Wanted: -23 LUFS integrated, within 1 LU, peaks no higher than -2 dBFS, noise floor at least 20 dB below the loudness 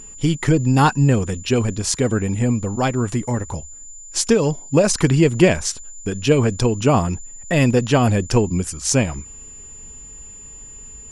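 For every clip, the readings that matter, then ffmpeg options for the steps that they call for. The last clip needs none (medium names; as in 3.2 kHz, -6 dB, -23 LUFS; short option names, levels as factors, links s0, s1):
steady tone 7.1 kHz; tone level -37 dBFS; loudness -18.5 LUFS; peak level -1.0 dBFS; loudness target -23.0 LUFS
-> -af "bandreject=f=7100:w=30"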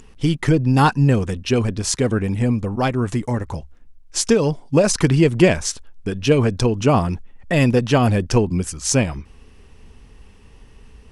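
steady tone not found; loudness -19.0 LUFS; peak level -1.5 dBFS; loudness target -23.0 LUFS
-> -af "volume=0.631"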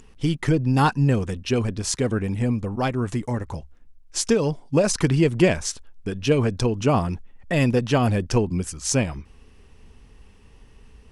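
loudness -23.0 LUFS; peak level -5.5 dBFS; noise floor -51 dBFS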